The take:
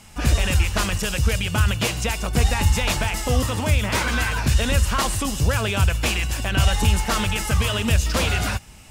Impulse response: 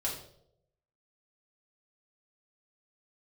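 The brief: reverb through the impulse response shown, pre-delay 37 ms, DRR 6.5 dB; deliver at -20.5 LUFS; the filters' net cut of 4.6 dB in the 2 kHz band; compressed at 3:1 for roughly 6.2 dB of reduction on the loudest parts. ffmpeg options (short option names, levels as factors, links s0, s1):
-filter_complex "[0:a]equalizer=f=2000:t=o:g=-6.5,acompressor=threshold=0.0891:ratio=3,asplit=2[s0][s1];[1:a]atrim=start_sample=2205,adelay=37[s2];[s1][s2]afir=irnorm=-1:irlink=0,volume=0.299[s3];[s0][s3]amix=inputs=2:normalize=0,volume=1.68"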